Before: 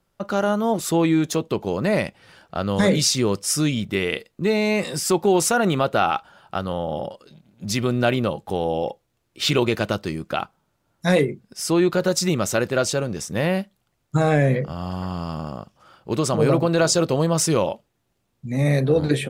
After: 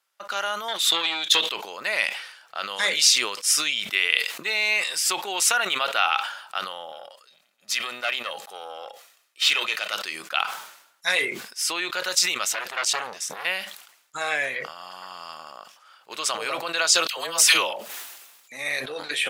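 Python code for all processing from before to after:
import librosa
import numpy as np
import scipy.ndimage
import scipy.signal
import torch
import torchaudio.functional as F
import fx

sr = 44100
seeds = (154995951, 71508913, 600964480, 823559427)

y = fx.chain(x, sr, fx.peak_eq(hz=3600.0, db=14.5, octaves=0.44),
    fx.transformer_sat(knee_hz=680.0), at=(0.68, 1.51))
y = fx.chain(y, sr, fx.highpass(hz=150.0, slope=12),
    fx.comb(ms=1.6, depth=0.33),
    fx.tube_stage(drive_db=9.0, bias=0.65), at=(6.92, 9.93))
y = fx.chain(y, sr, fx.low_shelf(hz=160.0, db=6.5),
    fx.transformer_sat(knee_hz=1500.0), at=(12.52, 13.45))
y = fx.chain(y, sr, fx.high_shelf(hz=11000.0, db=10.0),
    fx.dispersion(late='lows', ms=80.0, hz=740.0),
    fx.sustainer(db_per_s=45.0), at=(17.07, 18.52))
y = scipy.signal.sosfilt(scipy.signal.butter(2, 1300.0, 'highpass', fs=sr, output='sos'), y)
y = fx.dynamic_eq(y, sr, hz=2800.0, q=1.2, threshold_db=-42.0, ratio=4.0, max_db=6)
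y = fx.sustainer(y, sr, db_per_s=76.0)
y = y * librosa.db_to_amplitude(1.5)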